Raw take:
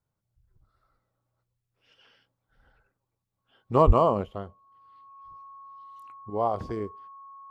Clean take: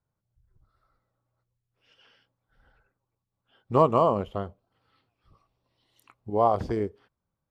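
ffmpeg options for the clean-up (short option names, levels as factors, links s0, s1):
-filter_complex "[0:a]bandreject=f=1100:w=30,asplit=3[s0][s1][s2];[s0]afade=t=out:st=3.86:d=0.02[s3];[s1]highpass=f=140:w=0.5412,highpass=f=140:w=1.3066,afade=t=in:st=3.86:d=0.02,afade=t=out:st=3.98:d=0.02[s4];[s2]afade=t=in:st=3.98:d=0.02[s5];[s3][s4][s5]amix=inputs=3:normalize=0,asetnsamples=n=441:p=0,asendcmd='4.26 volume volume 4.5dB',volume=1"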